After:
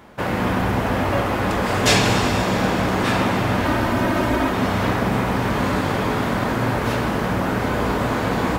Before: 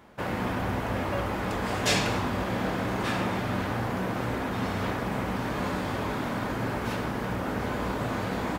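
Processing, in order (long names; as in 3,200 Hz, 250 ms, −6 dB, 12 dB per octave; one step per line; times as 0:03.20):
0:03.64–0:04.51: comb filter 3.2 ms, depth 72%
convolution reverb RT60 4.1 s, pre-delay 118 ms, DRR 5.5 dB
level +8 dB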